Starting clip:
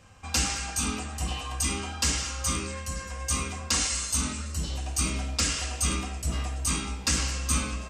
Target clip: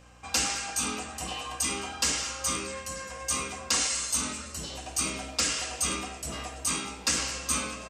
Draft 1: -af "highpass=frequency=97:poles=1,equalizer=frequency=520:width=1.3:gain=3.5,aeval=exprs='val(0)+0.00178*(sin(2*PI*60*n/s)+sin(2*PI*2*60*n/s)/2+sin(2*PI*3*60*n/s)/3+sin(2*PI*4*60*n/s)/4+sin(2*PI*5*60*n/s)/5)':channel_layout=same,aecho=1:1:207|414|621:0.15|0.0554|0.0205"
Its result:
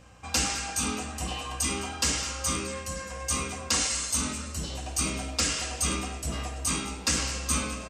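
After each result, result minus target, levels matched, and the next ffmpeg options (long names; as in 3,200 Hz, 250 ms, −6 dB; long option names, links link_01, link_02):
125 Hz band +7.5 dB; echo-to-direct +7.5 dB
-af "highpass=frequency=340:poles=1,equalizer=frequency=520:width=1.3:gain=3.5,aeval=exprs='val(0)+0.00178*(sin(2*PI*60*n/s)+sin(2*PI*2*60*n/s)/2+sin(2*PI*3*60*n/s)/3+sin(2*PI*4*60*n/s)/4+sin(2*PI*5*60*n/s)/5)':channel_layout=same,aecho=1:1:207|414|621:0.15|0.0554|0.0205"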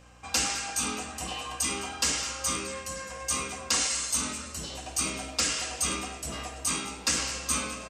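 echo-to-direct +7.5 dB
-af "highpass=frequency=340:poles=1,equalizer=frequency=520:width=1.3:gain=3.5,aeval=exprs='val(0)+0.00178*(sin(2*PI*60*n/s)+sin(2*PI*2*60*n/s)/2+sin(2*PI*3*60*n/s)/3+sin(2*PI*4*60*n/s)/4+sin(2*PI*5*60*n/s)/5)':channel_layout=same,aecho=1:1:207|414:0.0631|0.0233"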